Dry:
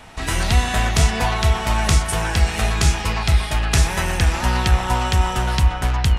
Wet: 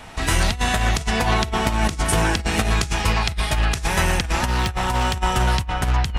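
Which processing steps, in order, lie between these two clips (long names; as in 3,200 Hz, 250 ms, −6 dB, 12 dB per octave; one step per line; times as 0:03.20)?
0:01.22–0:02.74: parametric band 280 Hz +8 dB 0.99 octaves
compressor whose output falls as the input rises −19 dBFS, ratio −0.5
0:04.45–0:05.17: hard clipping −15.5 dBFS, distortion −21 dB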